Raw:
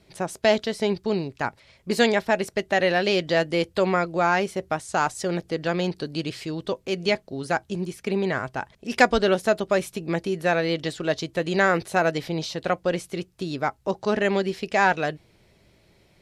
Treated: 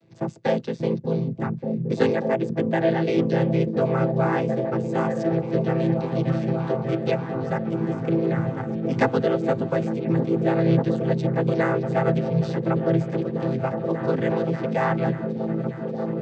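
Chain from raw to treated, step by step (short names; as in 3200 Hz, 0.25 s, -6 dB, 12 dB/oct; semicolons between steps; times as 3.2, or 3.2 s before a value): chord vocoder minor triad, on A2; repeats that get brighter 0.587 s, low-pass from 200 Hz, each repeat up 1 oct, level 0 dB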